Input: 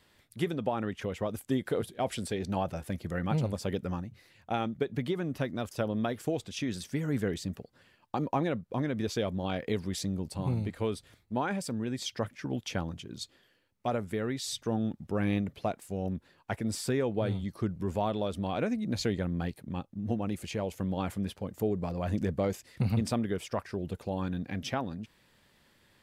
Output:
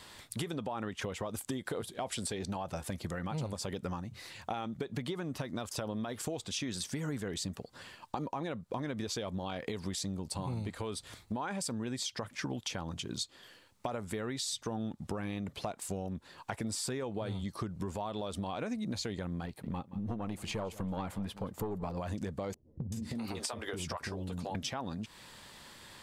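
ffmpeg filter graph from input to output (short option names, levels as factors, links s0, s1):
-filter_complex "[0:a]asettb=1/sr,asplit=3[s0][s1][s2];[s0]atrim=end=19.464[s3];[s1]atrim=start=19.46:end=21.97,asetpts=PTS-STARTPTS,afade=t=in:d=0.004:c=qsin,afade=t=out:st=2.506:d=0.004:c=qsin,aeval=exprs='(tanh(15.8*val(0)+0.45)-tanh(0.45))/15.8':c=same,equalizer=f=7000:t=o:w=2:g=-8,aecho=1:1:173:0.0891,atrim=end_sample=110691[s4];[s2]atrim=start=21.966[s5];[s3][s4]acrossfade=d=0.004:c1=hsin:c2=qsin[s6];[s6][s5]acrossfade=d=0.004:c1=qsin:c2=hsin,asettb=1/sr,asplit=3[s7][s8][s9];[s7]atrim=end=22.544[s10];[s8]atrim=start=22.54:end=24.55,asetpts=PTS-STARTPTS,afade=t=in:d=0.004:c=qsin,afade=t=out:st=2.006:d=0.004:c=qsin,acrossover=split=390[s11][s12];[s12]adelay=380[s13];[s11][s13]amix=inputs=2:normalize=0,atrim=end_sample=88641,acompressor=threshold=0.01:ratio=4:attack=3.2:release=140:knee=1:detection=peak,asplit=2[s14][s15];[s15]adelay=13,volume=0.398[s16];[s14][s16]amix=inputs=2:normalize=0,atrim=end_sample=88641[s17];[s9]atrim=start=24.546[s18];[s10][s17]acrossfade=d=0.004:c1=hsin:c2=qsin[s19];[s19][s18]acrossfade=d=0.004:c1=qsin:c2=hsin,equalizer=f=1000:t=o:w=1:g=7,equalizer=f=4000:t=o:w=1:g=5,equalizer=f=8000:t=o:w=1:g=8,alimiter=limit=0.075:level=0:latency=1:release=121,acompressor=threshold=0.00631:ratio=5,volume=2.66"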